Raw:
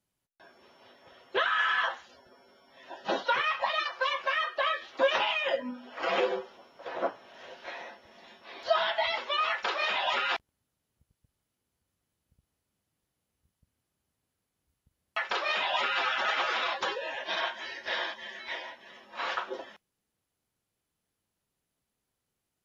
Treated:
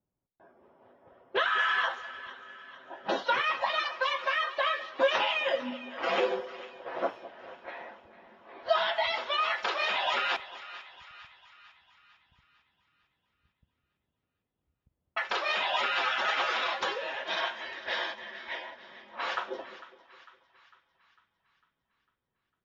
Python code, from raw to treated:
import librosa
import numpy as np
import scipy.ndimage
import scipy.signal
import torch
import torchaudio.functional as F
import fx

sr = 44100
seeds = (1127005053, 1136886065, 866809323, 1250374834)

y = fx.env_lowpass(x, sr, base_hz=860.0, full_db=-28.0)
y = fx.echo_split(y, sr, split_hz=1000.0, low_ms=206, high_ms=451, feedback_pct=52, wet_db=-15.5)